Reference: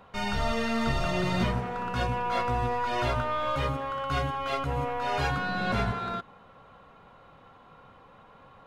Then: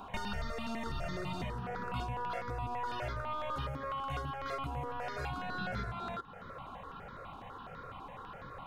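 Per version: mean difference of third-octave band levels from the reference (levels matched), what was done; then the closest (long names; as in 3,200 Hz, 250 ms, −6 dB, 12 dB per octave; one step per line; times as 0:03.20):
6.0 dB: downward compressor 8 to 1, threshold −42 dBFS, peak gain reduction 19.5 dB
step-sequenced phaser 12 Hz 520–2,700 Hz
level +9 dB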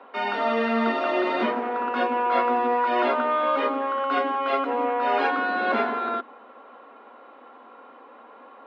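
8.5 dB: Butterworth high-pass 230 Hz 96 dB per octave
high-frequency loss of the air 380 metres
level +8.5 dB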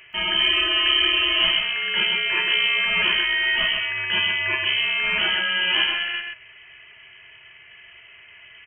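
15.0 dB: voice inversion scrambler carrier 3,100 Hz
single-tap delay 130 ms −6 dB
level +5.5 dB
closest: first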